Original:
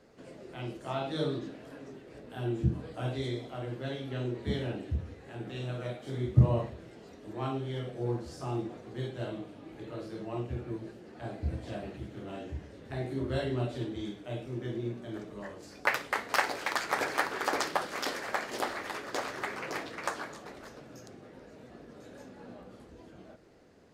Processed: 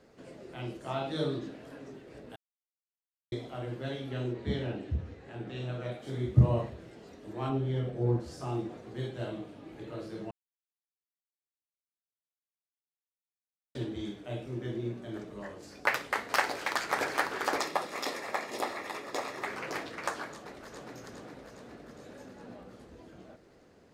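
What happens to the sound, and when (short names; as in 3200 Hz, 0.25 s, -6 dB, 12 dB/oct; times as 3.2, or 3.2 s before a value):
2.36–3.32 mute
4.33–5.92 air absorption 55 m
7.49–8.2 tilt -2 dB/oct
10.31–13.75 mute
17.58–19.46 notch comb 1500 Hz
20.31–20.93 echo throw 0.41 s, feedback 65%, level -2 dB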